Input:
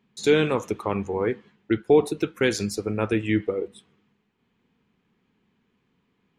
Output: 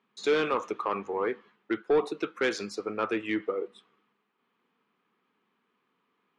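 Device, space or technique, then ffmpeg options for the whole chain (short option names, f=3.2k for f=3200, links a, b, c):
intercom: -af "highpass=330,lowpass=4.9k,equalizer=f=1.2k:t=o:w=0.48:g=9,asoftclip=type=tanh:threshold=-14dB,volume=-3dB"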